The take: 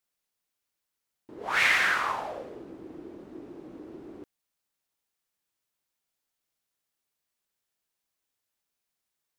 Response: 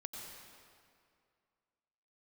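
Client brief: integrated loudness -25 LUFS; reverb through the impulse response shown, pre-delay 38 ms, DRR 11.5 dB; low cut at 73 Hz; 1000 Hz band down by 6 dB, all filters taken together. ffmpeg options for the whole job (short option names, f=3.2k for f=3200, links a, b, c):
-filter_complex "[0:a]highpass=73,equalizer=f=1k:t=o:g=-8,asplit=2[a][b];[1:a]atrim=start_sample=2205,adelay=38[c];[b][c]afir=irnorm=-1:irlink=0,volume=-9.5dB[d];[a][d]amix=inputs=2:normalize=0,volume=2dB"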